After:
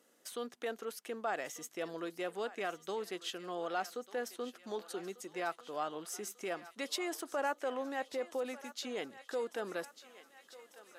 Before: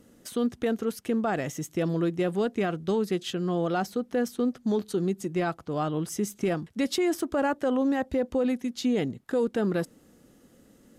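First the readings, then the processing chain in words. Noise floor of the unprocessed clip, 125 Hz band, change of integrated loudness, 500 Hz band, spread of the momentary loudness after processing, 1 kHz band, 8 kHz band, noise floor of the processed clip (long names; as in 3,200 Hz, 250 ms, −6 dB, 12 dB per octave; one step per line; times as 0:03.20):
−59 dBFS, −26.5 dB, −11.5 dB, −10.5 dB, 6 LU, −6.5 dB, −5.5 dB, −67 dBFS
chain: high-pass filter 580 Hz 12 dB per octave
feedback echo with a high-pass in the loop 1,194 ms, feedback 69%, high-pass 780 Hz, level −14.5 dB
level −5.5 dB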